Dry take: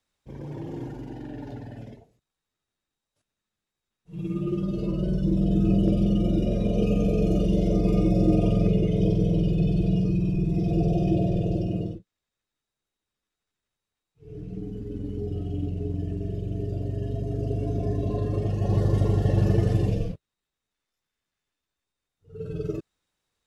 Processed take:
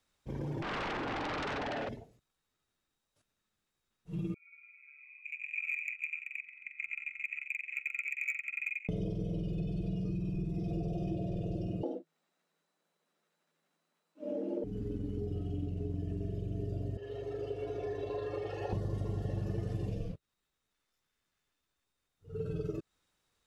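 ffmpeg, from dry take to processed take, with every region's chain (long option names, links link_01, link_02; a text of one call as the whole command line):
ffmpeg -i in.wav -filter_complex "[0:a]asettb=1/sr,asplit=3[link_01][link_02][link_03];[link_01]atrim=end=0.624[link_04];[link_02]atrim=start=0.62:end=1.89,asetpts=PTS-STARTPTS,afade=type=in:duration=0.004:curve=qsin,afade=type=out:start_time=1.266:duration=0.004:curve=qsin,highpass=590,lowpass=2600,aeval=exprs='0.02*sin(PI/2*5.62*val(0)/0.02)':channel_layout=same[link_05];[link_03]atrim=start=1.886[link_06];[link_04][link_05]acrossfade=duration=0.004:curve1=hsin:curve2=qsin[link_07];[link_07][link_06]acrossfade=duration=0.004:curve1=qsin:curve2=hsin,asettb=1/sr,asplit=3[link_08][link_09][link_10];[link_08]atrim=end=4.344[link_11];[link_09]atrim=start=4.34:end=8.89,asetpts=PTS-STARTPTS,afade=type=in:duration=0.004:curve=qsin,afade=type=out:start_time=4.546:duration=0.004:curve=qsin,lowpass=frequency=2200:width_type=q:width=0.5098,lowpass=frequency=2200:width_type=q:width=0.6013,lowpass=frequency=2200:width_type=q:width=0.9,lowpass=frequency=2200:width_type=q:width=2.563,afreqshift=-2600,volume=13dB,asoftclip=hard,volume=-13dB,agate=range=-32dB:threshold=-19dB:ratio=16:release=100:detection=peak[link_12];[link_10]atrim=start=8.886[link_13];[link_11][link_12]acrossfade=duration=0.004:curve1=hsin:curve2=qsin[link_14];[link_14][link_13]acrossfade=duration=0.004:curve1=qsin:curve2=hsin,asettb=1/sr,asplit=3[link_15][link_16][link_17];[link_15]atrim=end=11.834[link_18];[link_16]atrim=start=11.83:end=14.64,asetpts=PTS-STARTPTS,afade=type=in:duration=0.004:curve=qsin,afade=type=out:start_time=2.806:duration=0.004:curve=qsin,equalizer=frequency=520:width=0.31:gain=8.5,afreqshift=160[link_19];[link_17]atrim=start=14.636[link_20];[link_18][link_19]acrossfade=duration=0.004:curve1=hsin:curve2=qsin[link_21];[link_21][link_20]acrossfade=duration=0.004:curve1=qsin:curve2=hsin,asettb=1/sr,asplit=3[link_22][link_23][link_24];[link_22]atrim=end=16.974[link_25];[link_23]atrim=start=16.97:end=18.73,asetpts=PTS-STARTPTS,afade=type=in:duration=0.004:curve=qsin,afade=type=out:start_time=1.756:duration=0.004:curve=qsin,highpass=56,acrossover=split=490 4000:gain=0.0891 1 0.178[link_26][link_27][link_28];[link_26][link_27][link_28]amix=inputs=3:normalize=0,aecho=1:1:2.3:0.75,atrim=end_sample=77616[link_29];[link_24]atrim=start=18.726[link_30];[link_25][link_29]acrossfade=duration=0.004:curve1=hsin:curve2=qsin[link_31];[link_31][link_30]acrossfade=duration=0.004:curve1=qsin:curve2=hsin,equalizer=frequency=1300:width=4.5:gain=2.5,acompressor=threshold=-35dB:ratio=6,volume=1.5dB" out.wav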